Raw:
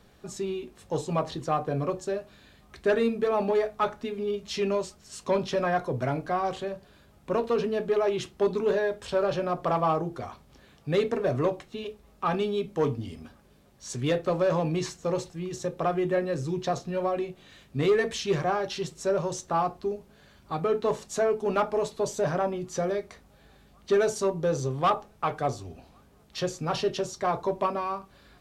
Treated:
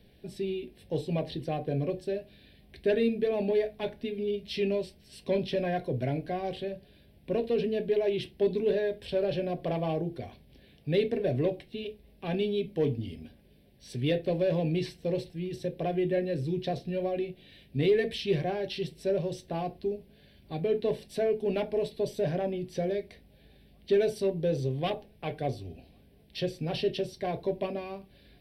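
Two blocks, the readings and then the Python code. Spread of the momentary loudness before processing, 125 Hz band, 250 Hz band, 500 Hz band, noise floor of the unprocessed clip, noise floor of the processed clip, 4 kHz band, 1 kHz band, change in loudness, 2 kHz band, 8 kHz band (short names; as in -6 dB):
11 LU, 0.0 dB, -0.5 dB, -2.0 dB, -58 dBFS, -59 dBFS, -1.5 dB, -10.0 dB, -2.5 dB, -5.5 dB, under -10 dB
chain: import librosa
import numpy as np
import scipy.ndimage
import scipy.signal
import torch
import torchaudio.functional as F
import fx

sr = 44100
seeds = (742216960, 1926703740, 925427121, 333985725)

y = fx.peak_eq(x, sr, hz=910.0, db=-10.0, octaves=0.29)
y = fx.fixed_phaser(y, sr, hz=3000.0, stages=4)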